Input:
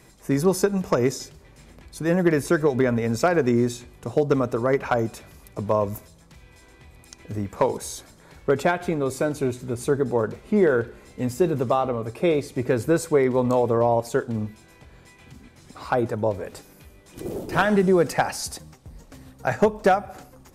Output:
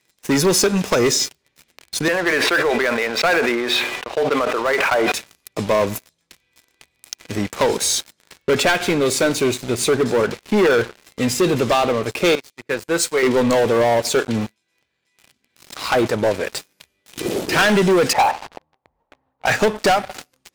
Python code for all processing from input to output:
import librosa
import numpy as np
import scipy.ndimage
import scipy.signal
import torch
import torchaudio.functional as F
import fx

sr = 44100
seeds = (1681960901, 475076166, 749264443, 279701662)

y = fx.chain(x, sr, fx.highpass(hz=640.0, slope=12),
    fx.air_absorb(metres=410.0),
    fx.sustainer(db_per_s=28.0), at=(2.08, 5.12))
y = fx.chain(y, sr, fx.low_shelf(hz=470.0, db=-8.5),
    fx.comb_fb(f0_hz=170.0, decay_s=0.3, harmonics='all', damping=0.0, mix_pct=50),
    fx.band_widen(depth_pct=100), at=(12.35, 13.23))
y = fx.chain(y, sr, fx.law_mismatch(coded='A'),
    fx.low_shelf(hz=81.0, db=-5.0),
    fx.pre_swell(db_per_s=46.0), at=(14.41, 15.84))
y = fx.chain(y, sr, fx.cvsd(bps=64000),
    fx.lowpass_res(hz=890.0, q=3.5),
    fx.peak_eq(hz=200.0, db=-8.5, octaves=1.7), at=(18.13, 19.46))
y = fx.weighting(y, sr, curve='D')
y = fx.leveller(y, sr, passes=5)
y = F.gain(torch.from_numpy(y), -9.0).numpy()